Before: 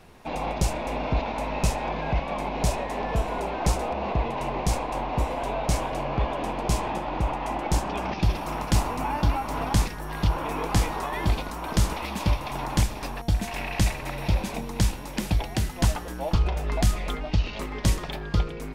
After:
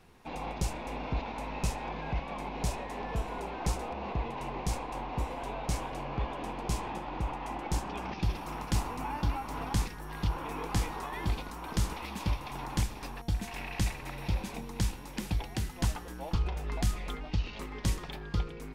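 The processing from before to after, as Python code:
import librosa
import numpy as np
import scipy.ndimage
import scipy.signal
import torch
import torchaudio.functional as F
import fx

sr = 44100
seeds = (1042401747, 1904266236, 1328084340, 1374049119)

y = fx.peak_eq(x, sr, hz=620.0, db=-7.0, octaves=0.26)
y = F.gain(torch.from_numpy(y), -7.5).numpy()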